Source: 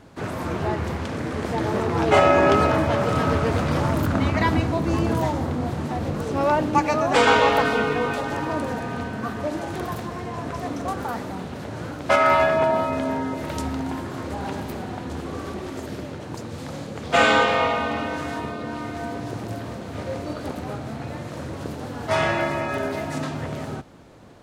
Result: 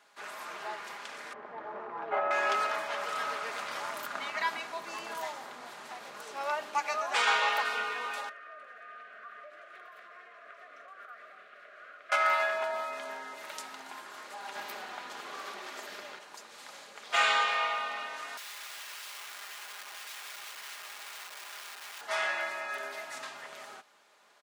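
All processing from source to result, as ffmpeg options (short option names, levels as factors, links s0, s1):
-filter_complex "[0:a]asettb=1/sr,asplit=3[s0][s1][s2];[s0]atrim=end=1.334[s3];[s1]atrim=start=1.33:end=2.31,asetpts=PTS-STARTPTS,afade=t=in:d=0.004:c=qsin,afade=t=out:st=0.976:d=0.004:c=qsin,lowpass=1100,lowshelf=f=200:g=4.5[s4];[s2]atrim=start=2.306[s5];[s3][s4]acrossfade=d=0.004:c1=hsin:c2=qsin[s6];[s6][s5]acrossfade=d=0.004:c1=qsin:c2=hsin,asettb=1/sr,asplit=3[s7][s8][s9];[s7]atrim=end=8.294[s10];[s8]atrim=start=8.29:end=12.12,asetpts=PTS-STARTPTS,afade=t=in:d=0.004:c=qsin,afade=t=out:st=3.826:d=0.004:c=qsin,acrossover=split=500 2400:gain=0.2 1 0.0708[s11][s12][s13];[s11][s12][s13]amix=inputs=3:normalize=0,acompressor=threshold=0.0251:ratio=5:attack=3.2:release=140:knee=1:detection=peak,asuperstop=centerf=900:order=8:qfactor=2.4[s14];[s9]atrim=start=12.116[s15];[s10][s14]acrossfade=d=0.004:c1=hsin:c2=qsin[s16];[s16][s15]acrossfade=d=0.004:c1=qsin:c2=hsin,asettb=1/sr,asplit=3[s17][s18][s19];[s17]atrim=end=14.554[s20];[s18]atrim=start=14.55:end=16.19,asetpts=PTS-STARTPTS,afade=t=in:d=0.004:c=qsin,afade=t=out:st=1.636:d=0.004:c=qsin,equalizer=f=9500:w=1:g=-5.5,acontrast=38[s21];[s19]atrim=start=16.186[s22];[s20][s21]acrossfade=d=0.004:c1=hsin:c2=qsin[s23];[s23][s22]acrossfade=d=0.004:c1=qsin:c2=hsin,asettb=1/sr,asplit=3[s24][s25][s26];[s24]atrim=end=18.374[s27];[s25]atrim=start=18.37:end=22.01,asetpts=PTS-STARTPTS,afade=t=in:d=0.004:c=qsin,afade=t=out:st=3.636:d=0.004:c=qsin,lowpass=f=1800:p=1,aemphasis=mode=reproduction:type=50fm,aeval=exprs='(mod(42.2*val(0)+1,2)-1)/42.2':c=same[s28];[s26]atrim=start=22.006[s29];[s27][s28]acrossfade=d=0.004:c1=hsin:c2=qsin[s30];[s30][s29]acrossfade=d=0.004:c1=qsin:c2=hsin,highpass=1100,aecho=1:1:4.9:0.42,volume=0.501"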